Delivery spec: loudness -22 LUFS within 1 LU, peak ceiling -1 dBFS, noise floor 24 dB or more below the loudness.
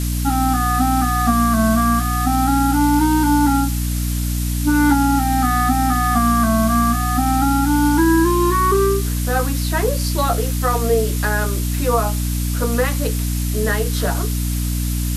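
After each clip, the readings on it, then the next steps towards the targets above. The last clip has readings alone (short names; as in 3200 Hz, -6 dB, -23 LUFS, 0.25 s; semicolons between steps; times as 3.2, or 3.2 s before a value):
hum 60 Hz; harmonics up to 300 Hz; hum level -18 dBFS; noise floor -21 dBFS; noise floor target -42 dBFS; loudness -18.0 LUFS; peak -4.0 dBFS; loudness target -22.0 LUFS
-> notches 60/120/180/240/300 Hz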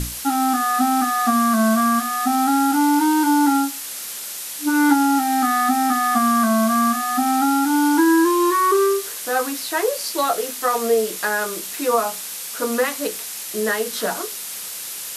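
hum none; noise floor -31 dBFS; noise floor target -44 dBFS
-> noise print and reduce 13 dB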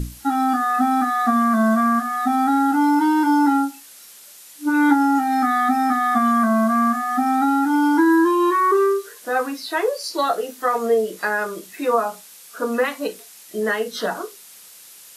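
noise floor -44 dBFS; loudness -19.5 LUFS; peak -5.0 dBFS; loudness target -22.0 LUFS
-> gain -2.5 dB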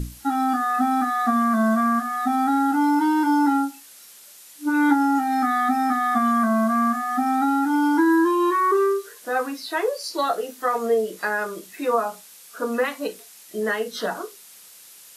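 loudness -22.0 LUFS; peak -7.5 dBFS; noise floor -47 dBFS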